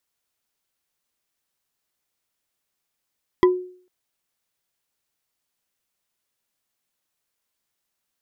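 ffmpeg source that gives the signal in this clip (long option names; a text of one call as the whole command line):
ffmpeg -f lavfi -i "aevalsrc='0.355*pow(10,-3*t/0.5)*sin(2*PI*364*t)+0.178*pow(10,-3*t/0.148)*sin(2*PI*1003.5*t)+0.0891*pow(10,-3*t/0.066)*sin(2*PI*1967.1*t)+0.0447*pow(10,-3*t/0.036)*sin(2*PI*3251.6*t)+0.0224*pow(10,-3*t/0.022)*sin(2*PI*4855.8*t)':duration=0.45:sample_rate=44100" out.wav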